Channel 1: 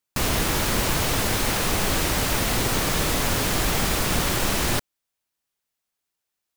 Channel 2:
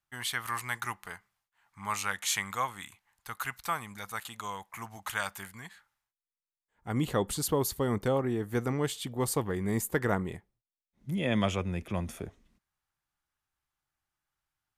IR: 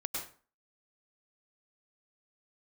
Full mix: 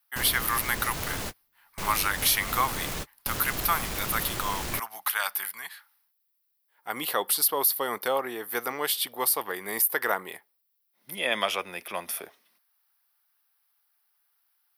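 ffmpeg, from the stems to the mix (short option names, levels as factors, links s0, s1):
-filter_complex "[0:a]asoftclip=type=tanh:threshold=0.0944,volume=0.211[s0];[1:a]highpass=710,highshelf=f=6300:t=q:w=3:g=-6,aexciter=amount=11.8:drive=3.8:freq=9200,volume=1.19,asplit=2[s1][s2];[s2]apad=whole_len=289499[s3];[s0][s3]sidechaingate=range=0.00316:threshold=0.00141:ratio=16:detection=peak[s4];[s4][s1]amix=inputs=2:normalize=0,acontrast=54,alimiter=limit=0.251:level=0:latency=1:release=125"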